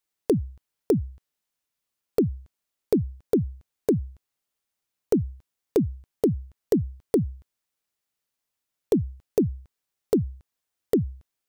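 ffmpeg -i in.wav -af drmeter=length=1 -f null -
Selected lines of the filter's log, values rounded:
Channel 1: DR: 11.6
Overall DR: 11.6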